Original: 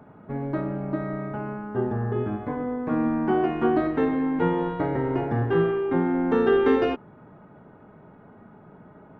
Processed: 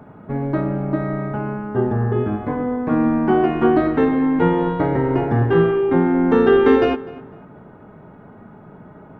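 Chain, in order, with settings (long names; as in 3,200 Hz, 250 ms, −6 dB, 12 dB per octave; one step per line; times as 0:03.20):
low-shelf EQ 140 Hz +3 dB
feedback echo with a low-pass in the loop 251 ms, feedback 28%, low-pass 3,300 Hz, level −18.5 dB
level +6 dB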